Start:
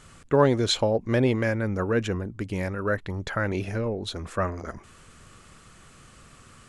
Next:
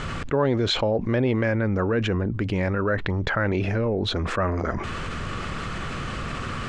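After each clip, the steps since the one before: low-pass 3.5 kHz 12 dB/octave; level flattener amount 70%; trim -4 dB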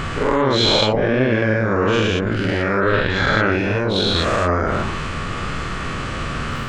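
every event in the spectrogram widened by 240 ms; on a send: reverse echo 46 ms -5 dB; on the sum: trim -1 dB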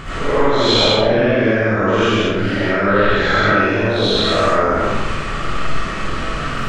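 algorithmic reverb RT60 0.84 s, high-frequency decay 0.75×, pre-delay 40 ms, DRR -10 dB; trim -7.5 dB

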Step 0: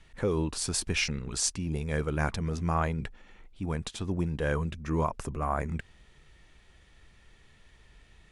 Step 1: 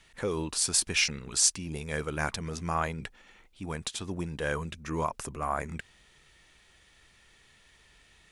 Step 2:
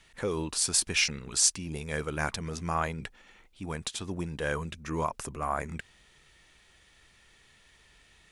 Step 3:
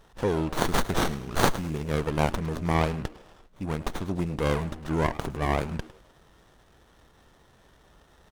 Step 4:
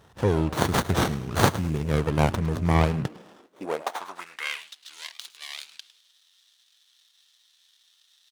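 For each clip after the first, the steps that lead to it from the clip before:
tilt EQ +2 dB/octave
no audible change
frequency-shifting echo 104 ms, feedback 42%, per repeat +150 Hz, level -17 dB; sliding maximum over 17 samples; trim +5.5 dB
high-pass sweep 91 Hz -> 3.8 kHz, 2.87–4.75 s; trim +1.5 dB

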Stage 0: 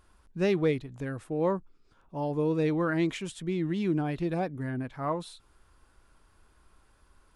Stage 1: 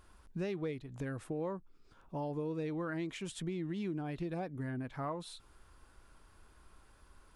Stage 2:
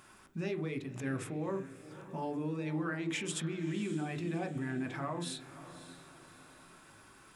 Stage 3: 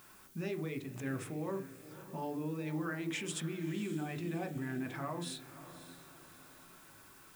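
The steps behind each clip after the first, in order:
compression 4:1, threshold -38 dBFS, peak gain reduction 14.5 dB; trim +1 dB
peak limiter -36 dBFS, peak gain reduction 8 dB; echo that smears into a reverb 572 ms, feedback 42%, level -13.5 dB; reverberation RT60 0.40 s, pre-delay 3 ms, DRR 6 dB; trim +8 dB
added noise blue -60 dBFS; trim -2 dB

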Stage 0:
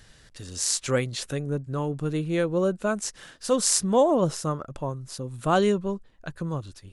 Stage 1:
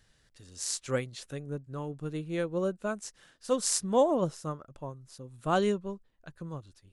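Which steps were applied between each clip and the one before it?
upward expansion 1.5:1, over -35 dBFS; trim -3.5 dB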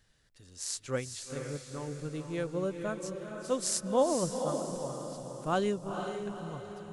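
echo that smears into a reverb 476 ms, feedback 48%, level -6 dB; trim -3 dB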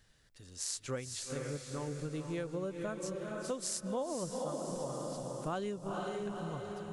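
compression 6:1, threshold -36 dBFS, peak gain reduction 13.5 dB; trim +1.5 dB

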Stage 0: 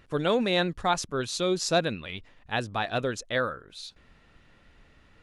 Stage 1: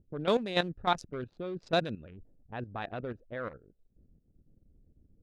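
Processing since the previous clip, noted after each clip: local Wiener filter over 41 samples; level held to a coarse grid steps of 12 dB; level-controlled noise filter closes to 320 Hz, open at -27.5 dBFS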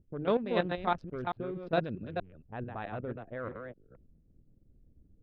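chunks repeated in reverse 220 ms, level -5 dB; distance through air 400 m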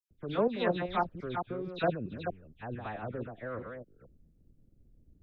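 phase dispersion lows, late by 109 ms, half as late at 2.4 kHz

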